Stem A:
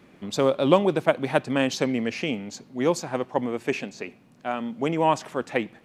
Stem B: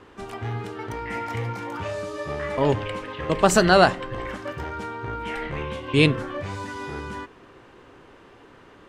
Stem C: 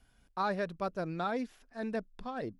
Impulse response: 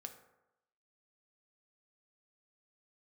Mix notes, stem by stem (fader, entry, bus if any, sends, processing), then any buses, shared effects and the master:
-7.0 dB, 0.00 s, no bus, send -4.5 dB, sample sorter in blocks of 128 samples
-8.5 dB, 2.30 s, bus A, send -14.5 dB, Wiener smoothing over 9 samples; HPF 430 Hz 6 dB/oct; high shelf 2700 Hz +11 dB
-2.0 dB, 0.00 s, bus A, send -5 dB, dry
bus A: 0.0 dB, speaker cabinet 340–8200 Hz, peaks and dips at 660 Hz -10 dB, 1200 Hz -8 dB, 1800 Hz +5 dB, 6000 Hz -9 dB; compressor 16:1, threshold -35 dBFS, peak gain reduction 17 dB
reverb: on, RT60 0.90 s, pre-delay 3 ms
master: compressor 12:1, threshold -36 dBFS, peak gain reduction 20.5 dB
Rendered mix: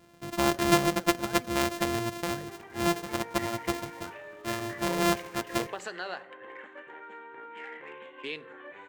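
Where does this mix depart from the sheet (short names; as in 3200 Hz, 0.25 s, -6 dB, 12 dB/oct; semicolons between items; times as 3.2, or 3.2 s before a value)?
stem B: missing high shelf 2700 Hz +11 dB; stem C -2.0 dB -> -10.5 dB; master: missing compressor 12:1, threshold -36 dBFS, peak gain reduction 20.5 dB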